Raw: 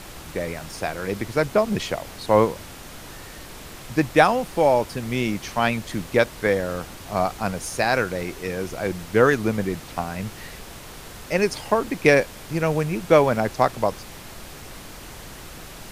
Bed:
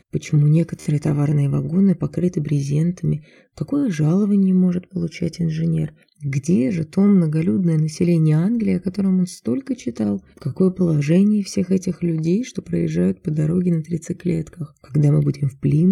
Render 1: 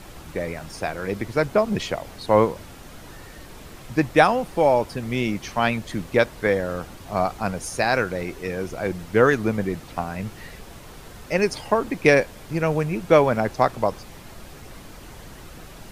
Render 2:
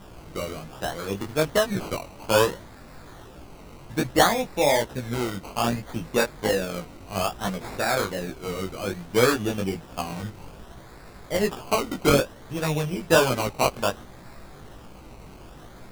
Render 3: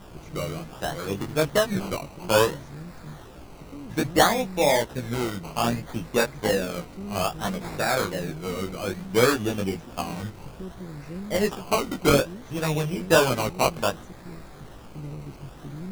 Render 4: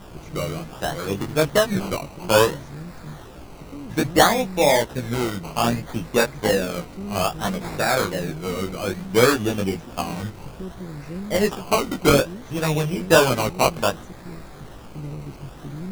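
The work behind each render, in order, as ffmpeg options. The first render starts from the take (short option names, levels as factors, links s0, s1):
-af "afftdn=nr=6:nf=-41"
-af "acrusher=samples=20:mix=1:aa=0.000001:lfo=1:lforange=12:lforate=0.61,flanger=delay=15.5:depth=6.1:speed=1.2"
-filter_complex "[1:a]volume=0.0841[s0];[0:a][s0]amix=inputs=2:normalize=0"
-af "volume=1.5,alimiter=limit=0.794:level=0:latency=1"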